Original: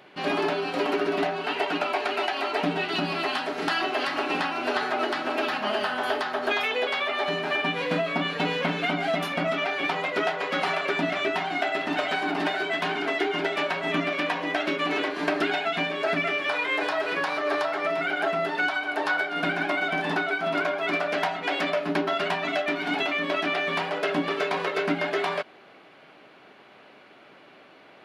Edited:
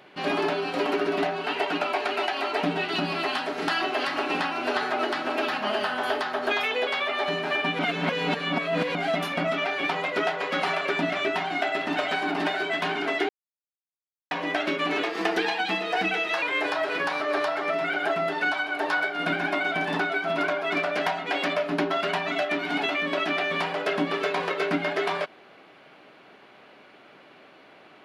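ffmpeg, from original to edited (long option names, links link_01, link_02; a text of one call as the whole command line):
ffmpeg -i in.wav -filter_complex "[0:a]asplit=7[link_01][link_02][link_03][link_04][link_05][link_06][link_07];[link_01]atrim=end=7.792[link_08];[link_02]atrim=start=7.788:end=8.952,asetpts=PTS-STARTPTS,areverse[link_09];[link_03]atrim=start=8.948:end=13.29,asetpts=PTS-STARTPTS,afade=type=out:start_time=4.338:duration=0.004:curve=hsin[link_10];[link_04]atrim=start=13.29:end=14.31,asetpts=PTS-STARTPTS,volume=0[link_11];[link_05]atrim=start=14.31:end=15.034,asetpts=PTS-STARTPTS,afade=type=in:duration=0.004:curve=hsin[link_12];[link_06]atrim=start=15.03:end=16.59,asetpts=PTS-STARTPTS,asetrate=49392,aresample=44100[link_13];[link_07]atrim=start=16.586[link_14];[link_08][link_09]acrossfade=duration=0.004:curve1=hsin:curve2=hsin[link_15];[link_10][link_11][link_12]concat=n=3:v=0:a=1[link_16];[link_15][link_16]acrossfade=duration=0.004:curve1=hsin:curve2=hsin[link_17];[link_17][link_13]acrossfade=duration=0.004:curve1=hsin:curve2=hsin[link_18];[link_18][link_14]acrossfade=duration=0.004:curve1=hsin:curve2=hsin" out.wav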